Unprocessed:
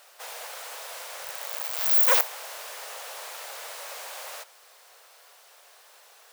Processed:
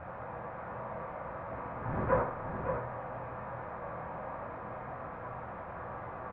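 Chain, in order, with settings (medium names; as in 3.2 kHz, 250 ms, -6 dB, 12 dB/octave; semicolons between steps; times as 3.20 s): one-bit delta coder 64 kbps, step -30 dBFS; low-pass 1.2 kHz 24 dB/octave; peaking EQ 79 Hz +11.5 dB 2.1 oct; delay 564 ms -6.5 dB; reverberation RT60 0.60 s, pre-delay 3 ms, DRR 0.5 dB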